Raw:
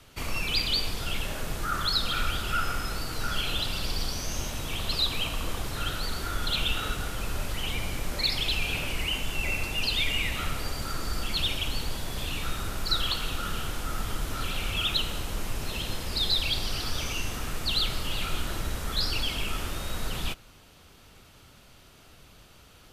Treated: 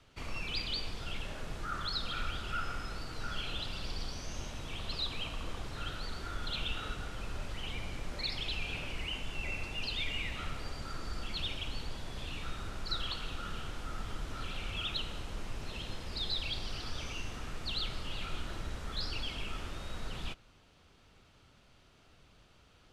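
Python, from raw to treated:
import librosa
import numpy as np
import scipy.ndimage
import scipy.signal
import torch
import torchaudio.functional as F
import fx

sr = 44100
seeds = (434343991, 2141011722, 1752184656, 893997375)

y = fx.air_absorb(x, sr, metres=67.0)
y = y * 10.0 ** (-8.0 / 20.0)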